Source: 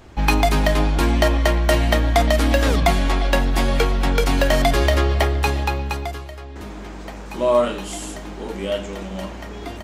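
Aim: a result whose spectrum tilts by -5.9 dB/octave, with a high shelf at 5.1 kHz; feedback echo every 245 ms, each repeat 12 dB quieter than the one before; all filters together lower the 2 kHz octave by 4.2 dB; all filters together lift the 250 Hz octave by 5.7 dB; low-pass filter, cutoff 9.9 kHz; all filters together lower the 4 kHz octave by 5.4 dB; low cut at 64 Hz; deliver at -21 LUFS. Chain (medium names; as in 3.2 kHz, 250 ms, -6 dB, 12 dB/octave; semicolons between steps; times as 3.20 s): high-pass 64 Hz; low-pass 9.9 kHz; peaking EQ 250 Hz +7 dB; peaking EQ 2 kHz -4 dB; peaking EQ 4 kHz -9 dB; treble shelf 5.1 kHz +7.5 dB; feedback delay 245 ms, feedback 25%, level -12 dB; trim -1.5 dB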